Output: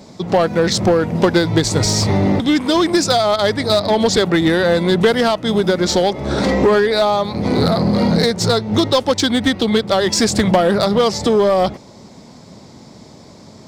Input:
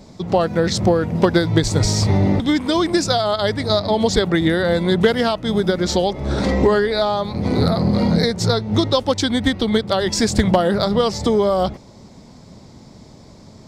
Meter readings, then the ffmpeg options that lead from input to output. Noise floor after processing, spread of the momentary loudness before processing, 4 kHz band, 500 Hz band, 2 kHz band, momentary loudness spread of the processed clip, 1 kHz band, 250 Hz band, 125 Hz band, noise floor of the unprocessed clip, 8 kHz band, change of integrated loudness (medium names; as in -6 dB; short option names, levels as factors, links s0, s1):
-41 dBFS, 3 LU, +3.5 dB, +3.0 dB, +3.5 dB, 3 LU, +3.5 dB, +2.0 dB, 0.0 dB, -44 dBFS, +4.5 dB, +2.5 dB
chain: -filter_complex "[0:a]highpass=f=170:p=1,asplit=2[s0][s1];[s1]aeval=exprs='0.178*(abs(mod(val(0)/0.178+3,4)-2)-1)':c=same,volume=0.447[s2];[s0][s2]amix=inputs=2:normalize=0,volume=1.19"